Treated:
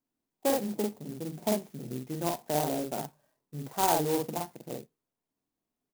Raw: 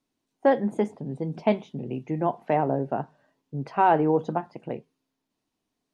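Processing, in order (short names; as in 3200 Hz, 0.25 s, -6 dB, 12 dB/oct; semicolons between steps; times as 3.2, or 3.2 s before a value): treble ducked by the level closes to 1900 Hz, closed at -19 dBFS; doubler 47 ms -2 dB; clock jitter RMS 0.097 ms; gain -8 dB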